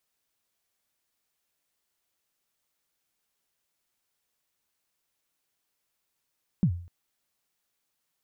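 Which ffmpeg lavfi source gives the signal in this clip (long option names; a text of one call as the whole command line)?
ffmpeg -f lavfi -i "aevalsrc='0.158*pow(10,-3*t/0.48)*sin(2*PI*(210*0.079/log(87/210)*(exp(log(87/210)*min(t,0.079)/0.079)-1)+87*max(t-0.079,0)))':duration=0.25:sample_rate=44100" out.wav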